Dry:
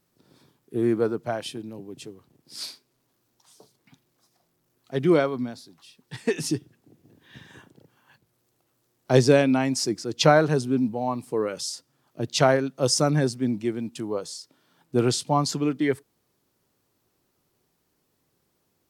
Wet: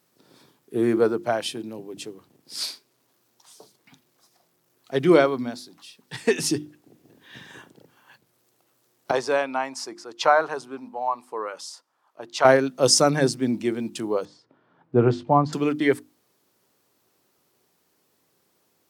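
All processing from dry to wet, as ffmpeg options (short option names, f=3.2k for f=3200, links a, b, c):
-filter_complex "[0:a]asettb=1/sr,asplit=3[a][b][c];[a]atrim=end=9.114[d];[b]atrim=start=9.11:end=12.45,asetpts=PTS-STARTPTS,afade=t=in:d=0.004:c=qsin,afade=t=out:st=3.336:d=0.004:c=qsin,bandpass=f=1k:t=q:w=2,aemphasis=mode=production:type=75kf[e];[c]atrim=start=12.446[f];[d][e]acrossfade=d=0.004:c1=hsin:c2=qsin[g];[g][f]acrossfade=d=0.004:c1=qsin:c2=hsin,asettb=1/sr,asplit=3[h][i][j];[h]atrim=end=14.254[k];[i]atrim=start=14.25:end=15.53,asetpts=PTS-STARTPTS,afade=t=in:d=0.004:c=qsin,afade=t=out:st=1.276:d=0.004:c=qsin,lowpass=1.4k,equalizer=f=96:t=o:w=0.98:g=9.5[l];[j]atrim=start=15.526[m];[k][l]acrossfade=d=0.004:c1=hsin:c2=qsin[n];[n][m]acrossfade=d=0.004:c1=qsin:c2=hsin,highpass=f=260:p=1,bandreject=f=50:t=h:w=6,bandreject=f=100:t=h:w=6,bandreject=f=150:t=h:w=6,bandreject=f=200:t=h:w=6,bandreject=f=250:t=h:w=6,bandreject=f=300:t=h:w=6,bandreject=f=350:t=h:w=6,volume=5.5dB"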